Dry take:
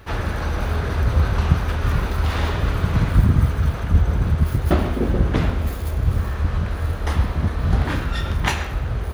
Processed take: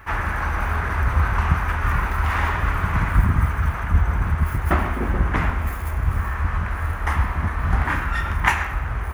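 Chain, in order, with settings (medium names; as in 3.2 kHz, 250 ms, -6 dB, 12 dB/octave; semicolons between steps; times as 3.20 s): graphic EQ 125/250/500/1000/2000/4000 Hz -5/-3/-8/+7/+8/-12 dB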